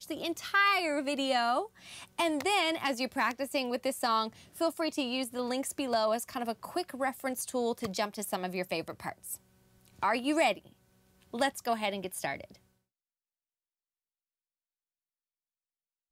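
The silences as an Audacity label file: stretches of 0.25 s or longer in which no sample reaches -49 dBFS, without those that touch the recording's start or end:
9.370000	9.810000	silence
10.720000	11.220000	silence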